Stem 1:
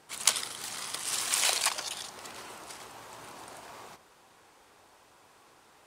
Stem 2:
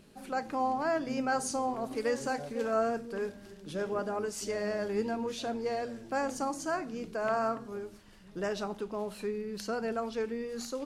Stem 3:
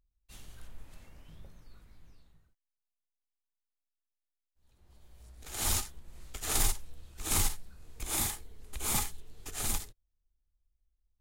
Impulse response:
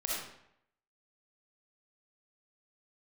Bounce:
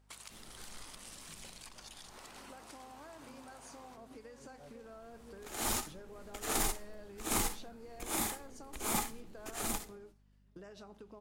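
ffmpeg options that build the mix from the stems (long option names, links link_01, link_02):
-filter_complex "[0:a]acompressor=threshold=-38dB:ratio=4,volume=0dB[link_01];[1:a]acompressor=threshold=-36dB:ratio=6,adelay=2200,volume=-4dB[link_02];[2:a]firequalizer=gain_entry='entry(110,0);entry(210,13);entry(3500,5)':delay=0.05:min_phase=1,volume=-10dB,asplit=2[link_03][link_04];[link_04]volume=-23dB[link_05];[link_01][link_02]amix=inputs=2:normalize=0,agate=range=-19dB:threshold=-49dB:ratio=16:detection=peak,acompressor=threshold=-50dB:ratio=5,volume=0dB[link_06];[3:a]atrim=start_sample=2205[link_07];[link_05][link_07]afir=irnorm=-1:irlink=0[link_08];[link_03][link_06][link_08]amix=inputs=3:normalize=0,aeval=exprs='val(0)+0.000501*(sin(2*PI*50*n/s)+sin(2*PI*2*50*n/s)/2+sin(2*PI*3*50*n/s)/3+sin(2*PI*4*50*n/s)/4+sin(2*PI*5*50*n/s)/5)':channel_layout=same"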